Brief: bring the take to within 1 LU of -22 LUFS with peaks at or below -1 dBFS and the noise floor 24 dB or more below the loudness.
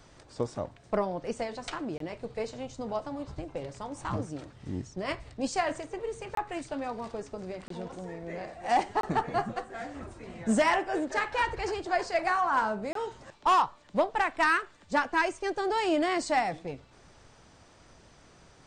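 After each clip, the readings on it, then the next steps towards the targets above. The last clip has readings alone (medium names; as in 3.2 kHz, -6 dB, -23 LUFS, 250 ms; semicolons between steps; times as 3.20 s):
dropouts 5; longest dropout 23 ms; loudness -31.0 LUFS; peak level -17.5 dBFS; loudness target -22.0 LUFS
-> interpolate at 1.98/6.35/7.68/9.01/12.93 s, 23 ms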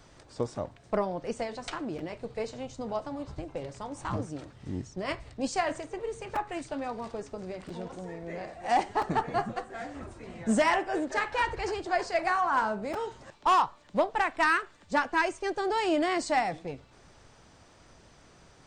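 dropouts 0; loudness -31.0 LUFS; peak level -17.5 dBFS; loudness target -22.0 LUFS
-> trim +9 dB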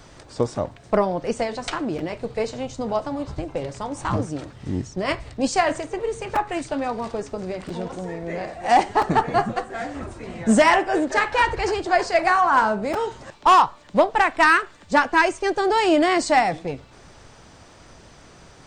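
loudness -22.0 LUFS; peak level -8.5 dBFS; noise floor -48 dBFS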